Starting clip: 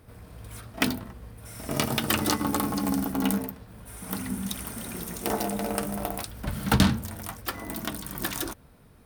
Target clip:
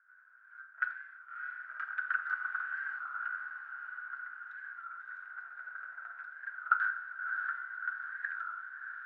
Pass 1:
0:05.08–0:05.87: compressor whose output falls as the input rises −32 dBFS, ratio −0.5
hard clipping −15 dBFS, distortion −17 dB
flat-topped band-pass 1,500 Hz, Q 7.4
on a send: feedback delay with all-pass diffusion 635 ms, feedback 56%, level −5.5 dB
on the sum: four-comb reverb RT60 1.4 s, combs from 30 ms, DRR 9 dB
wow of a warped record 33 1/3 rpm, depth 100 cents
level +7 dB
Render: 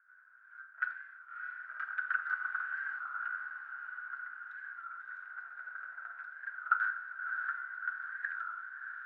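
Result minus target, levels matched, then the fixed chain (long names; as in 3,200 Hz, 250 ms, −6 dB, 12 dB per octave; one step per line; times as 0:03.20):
hard clipping: distortion +16 dB
0:05.08–0:05.87: compressor whose output falls as the input rises −32 dBFS, ratio −0.5
hard clipping −8.5 dBFS, distortion −33 dB
flat-topped band-pass 1,500 Hz, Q 7.4
on a send: feedback delay with all-pass diffusion 635 ms, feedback 56%, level −5.5 dB
on the sum: four-comb reverb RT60 1.4 s, combs from 30 ms, DRR 9 dB
wow of a warped record 33 1/3 rpm, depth 100 cents
level +7 dB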